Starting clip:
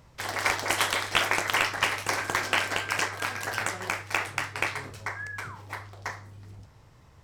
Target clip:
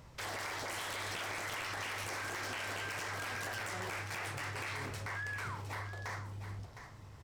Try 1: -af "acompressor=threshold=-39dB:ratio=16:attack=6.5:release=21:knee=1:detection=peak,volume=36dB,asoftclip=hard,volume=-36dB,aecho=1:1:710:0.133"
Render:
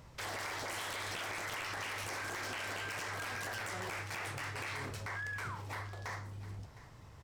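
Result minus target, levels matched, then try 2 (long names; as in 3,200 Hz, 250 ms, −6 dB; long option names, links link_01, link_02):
echo-to-direct −7.5 dB
-af "acompressor=threshold=-39dB:ratio=16:attack=6.5:release=21:knee=1:detection=peak,volume=36dB,asoftclip=hard,volume=-36dB,aecho=1:1:710:0.316"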